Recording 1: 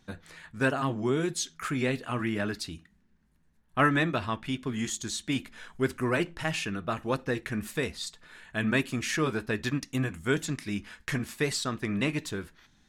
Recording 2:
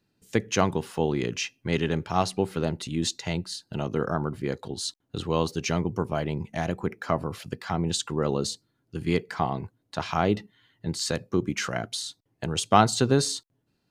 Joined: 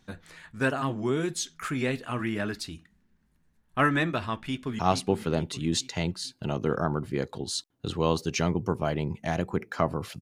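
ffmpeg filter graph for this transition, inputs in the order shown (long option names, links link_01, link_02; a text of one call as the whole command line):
ffmpeg -i cue0.wav -i cue1.wav -filter_complex "[0:a]apad=whole_dur=10.21,atrim=end=10.21,atrim=end=4.792[link_01];[1:a]atrim=start=2.088:end=7.51[link_02];[link_01][link_02]acrossfade=duration=0.004:curve1=hsin:curve2=hsin,asplit=2[link_03][link_04];[link_04]afade=type=in:start_time=4.35:duration=0.01,afade=type=out:start_time=4.79:duration=0.01,aecho=0:1:440|880|1320|1760|2200|2640:0.375837|0.187919|0.0939594|0.0469797|0.0234898|0.0117449[link_05];[link_03][link_05]amix=inputs=2:normalize=0" out.wav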